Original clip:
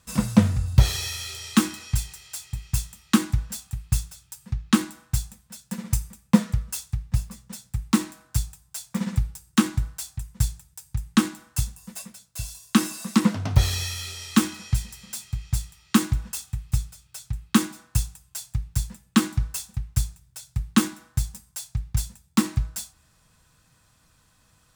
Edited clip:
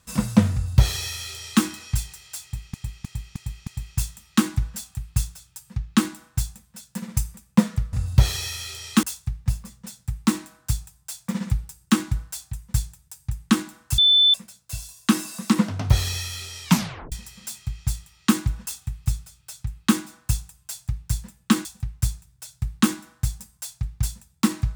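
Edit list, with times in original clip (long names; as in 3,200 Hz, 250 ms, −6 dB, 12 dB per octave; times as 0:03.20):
0:00.53–0:01.63: duplicate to 0:06.69
0:02.43–0:02.74: repeat, 5 plays
0:11.64–0:12.00: beep over 3,520 Hz −12.5 dBFS
0:14.30: tape stop 0.48 s
0:19.31–0:19.59: remove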